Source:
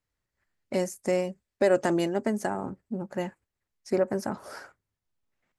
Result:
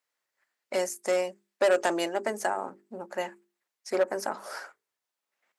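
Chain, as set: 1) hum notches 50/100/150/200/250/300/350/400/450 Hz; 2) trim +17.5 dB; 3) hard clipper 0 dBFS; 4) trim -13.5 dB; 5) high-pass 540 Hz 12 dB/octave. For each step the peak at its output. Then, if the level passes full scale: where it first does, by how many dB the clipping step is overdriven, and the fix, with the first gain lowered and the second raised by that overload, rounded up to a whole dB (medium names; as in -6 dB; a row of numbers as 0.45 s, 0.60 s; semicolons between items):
-11.0 dBFS, +6.5 dBFS, 0.0 dBFS, -13.5 dBFS, -11.0 dBFS; step 2, 6.5 dB; step 2 +10.5 dB, step 4 -6.5 dB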